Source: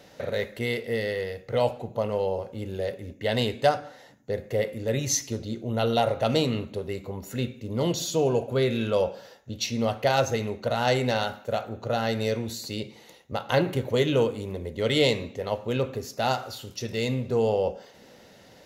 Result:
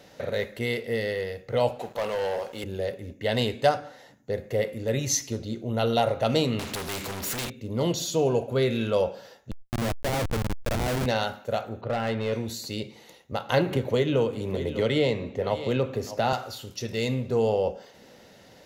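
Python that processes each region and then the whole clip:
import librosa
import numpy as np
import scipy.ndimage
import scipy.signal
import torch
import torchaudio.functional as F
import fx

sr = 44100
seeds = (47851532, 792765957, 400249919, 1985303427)

y = fx.chain(x, sr, fx.highpass(hz=1200.0, slope=6),
    fx.leveller(passes=3), at=(1.79, 2.64))
y = fx.chain(y, sr, fx.peak_eq(hz=750.0, db=-10.0, octaves=0.54),
    fx.leveller(passes=5),
    fx.spectral_comp(ratio=2.0), at=(6.59, 7.5))
y = fx.chain(y, sr, fx.lowpass(hz=1700.0, slope=12),
    fx.schmitt(flips_db=-25.5),
    fx.sustainer(db_per_s=68.0), at=(9.51, 11.06))
y = fx.chain(y, sr, fx.lowpass(hz=3400.0, slope=24),
    fx.clip_hard(threshold_db=-22.5), at=(11.81, 12.33))
y = fx.chain(y, sr, fx.high_shelf(hz=3700.0, db=-9.5),
    fx.echo_single(ms=600, db=-17.5),
    fx.band_squash(depth_pct=70), at=(13.71, 16.33))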